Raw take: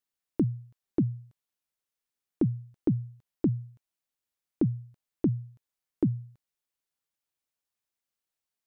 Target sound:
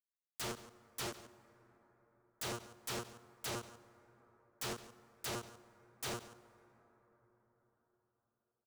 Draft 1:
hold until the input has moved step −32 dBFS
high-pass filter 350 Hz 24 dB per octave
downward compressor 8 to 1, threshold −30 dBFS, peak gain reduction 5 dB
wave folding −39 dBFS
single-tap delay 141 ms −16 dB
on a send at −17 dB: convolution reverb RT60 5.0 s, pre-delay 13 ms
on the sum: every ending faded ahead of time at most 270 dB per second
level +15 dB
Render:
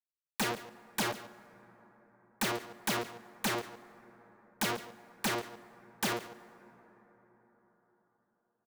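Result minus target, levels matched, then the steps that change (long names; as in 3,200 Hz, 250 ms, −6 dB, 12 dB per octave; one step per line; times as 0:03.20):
wave folding: distortion −13 dB
change: wave folding −50 dBFS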